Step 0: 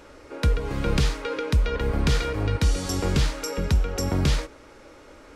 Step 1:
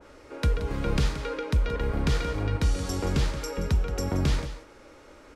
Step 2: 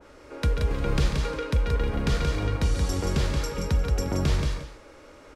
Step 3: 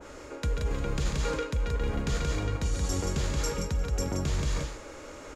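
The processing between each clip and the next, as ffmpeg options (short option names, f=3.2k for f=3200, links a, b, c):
-af "aecho=1:1:176:0.266,adynamicequalizer=threshold=0.00708:dfrequency=2000:dqfactor=0.7:tfrequency=2000:tqfactor=0.7:attack=5:release=100:ratio=0.375:range=1.5:mode=cutabove:tftype=highshelf,volume=-3dB"
-af "aecho=1:1:142.9|177.8:0.282|0.562"
-af "equalizer=f=6.9k:w=5.3:g=11.5,areverse,acompressor=threshold=-31dB:ratio=6,areverse,volume=5dB"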